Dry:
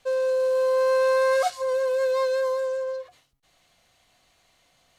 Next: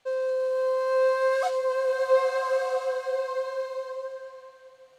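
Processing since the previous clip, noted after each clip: low-pass 1 kHz 6 dB/octave; tilt EQ +3 dB/octave; swelling reverb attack 1260 ms, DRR 0.5 dB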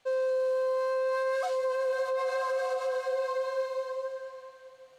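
peak limiter -23.5 dBFS, peak gain reduction 12 dB

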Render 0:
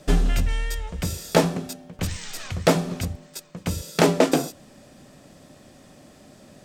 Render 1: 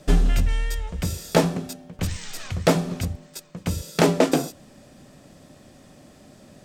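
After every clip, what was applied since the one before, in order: bass shelf 220 Hz +3 dB; trim -1 dB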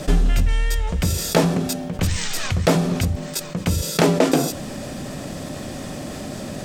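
level flattener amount 50%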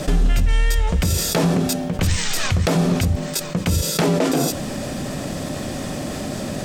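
peak limiter -13.5 dBFS, peak gain reduction 9.5 dB; trim +4 dB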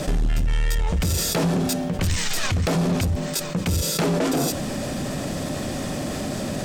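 saturation -16.5 dBFS, distortion -13 dB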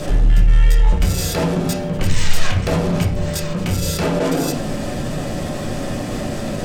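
reverberation RT60 0.55 s, pre-delay 6 ms, DRR -2 dB; trim -1 dB

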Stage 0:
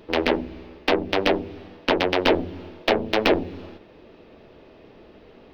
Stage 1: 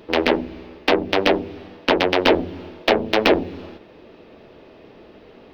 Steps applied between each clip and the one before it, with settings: bass shelf 73 Hz -7 dB; trim +3.5 dB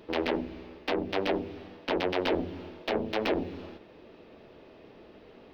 peak limiter -11 dBFS, peak gain reduction 9.5 dB; trim -6.5 dB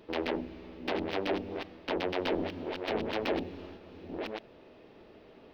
chunks repeated in reverse 627 ms, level -6 dB; trim -3.5 dB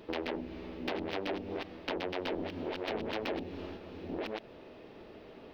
compression 3:1, threshold -38 dBFS, peak gain reduction 9.5 dB; trim +3.5 dB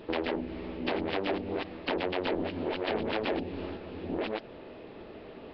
trim +5 dB; Nellymoser 22 kbps 11.025 kHz

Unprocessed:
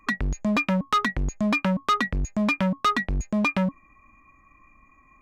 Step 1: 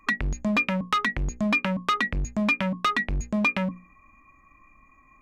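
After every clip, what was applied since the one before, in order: dynamic bell 2.4 kHz, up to +7 dB, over -40 dBFS, Q 1.3; compression 2.5:1, threshold -22 dBFS, peak gain reduction 5.5 dB; hum notches 60/120/180/240/300/360/420/480/540 Hz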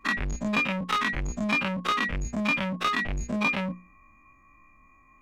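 every event in the spectrogram widened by 60 ms; trim -5 dB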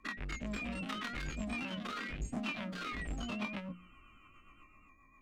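compression 6:1, threshold -35 dBFS, peak gain reduction 13.5 dB; rotary cabinet horn 7.5 Hz; ever faster or slower copies 247 ms, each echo +2 st, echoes 2; trim -2.5 dB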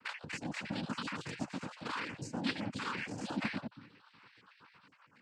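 random holes in the spectrogram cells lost 38%; noise-vocoded speech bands 8; trim +4 dB; MP3 64 kbps 44.1 kHz

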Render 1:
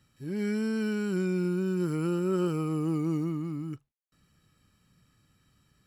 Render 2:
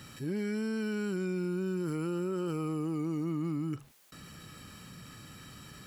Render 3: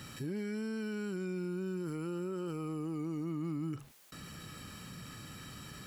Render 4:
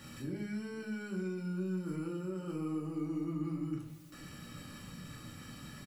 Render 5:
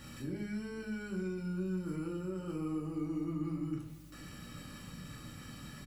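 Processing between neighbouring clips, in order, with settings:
bass shelf 88 Hz -11.5 dB; peak limiter -29 dBFS, peak gain reduction 10 dB; level flattener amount 50%; trim +2.5 dB
peak limiter -32 dBFS, peak gain reduction 6.5 dB; trim +1.5 dB
delay 494 ms -20.5 dB; simulated room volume 320 m³, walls furnished, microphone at 2.4 m; trim -6 dB
hum 50 Hz, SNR 19 dB

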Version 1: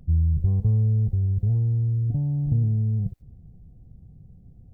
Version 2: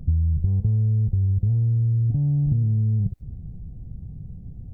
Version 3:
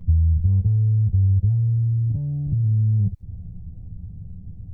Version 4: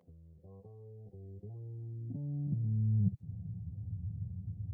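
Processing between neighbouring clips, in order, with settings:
bass shelf 380 Hz +8.5 dB; compression, threshold -22 dBFS, peak gain reduction 12.5 dB; trim +3 dB
chorus voices 6, 0.61 Hz, delay 11 ms, depth 1.1 ms
high-pass sweep 530 Hz -> 100 Hz, 0.76–3.80 s; trim -8.5 dB

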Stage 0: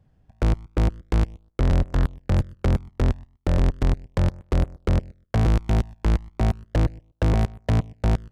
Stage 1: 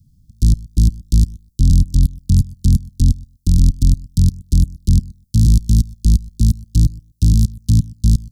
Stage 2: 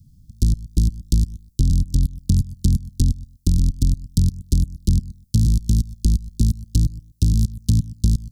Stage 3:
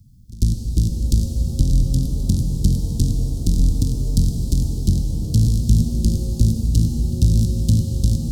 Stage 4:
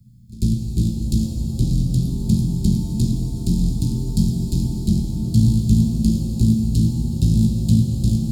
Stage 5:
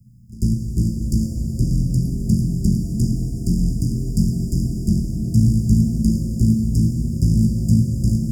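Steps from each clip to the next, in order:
inverse Chebyshev band-stop 510–2100 Hz, stop band 50 dB; treble shelf 5.5 kHz +12 dB; trim +8.5 dB
compression, threshold -16 dBFS, peak gain reduction 9.5 dB; trim +2.5 dB
pre-echo 96 ms -20 dB; pitch-shifted reverb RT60 3.5 s, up +7 st, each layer -8 dB, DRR 3 dB
reverberation RT60 0.65 s, pre-delay 3 ms, DRR -2.5 dB; trim -4.5 dB
brick-wall FIR band-stop 700–4700 Hz

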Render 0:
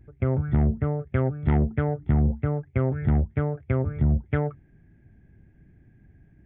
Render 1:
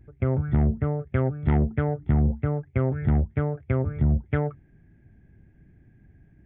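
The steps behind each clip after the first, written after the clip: no audible change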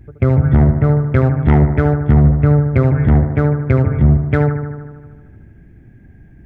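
in parallel at -4 dB: hard clipper -18 dBFS, distortion -15 dB; on the sum: bucket-brigade echo 75 ms, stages 1024, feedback 71%, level -8 dB; trim +7 dB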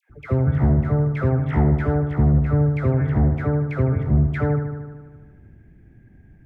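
phase dispersion lows, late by 99 ms, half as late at 960 Hz; trim -6.5 dB

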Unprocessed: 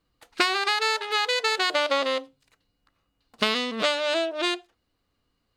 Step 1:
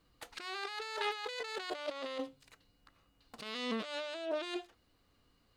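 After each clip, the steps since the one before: compressor with a negative ratio -35 dBFS, ratio -1; trim -5.5 dB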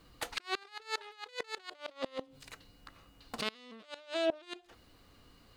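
inverted gate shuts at -30 dBFS, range -26 dB; trim +10.5 dB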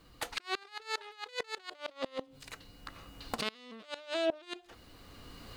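recorder AGC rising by 10 dB/s

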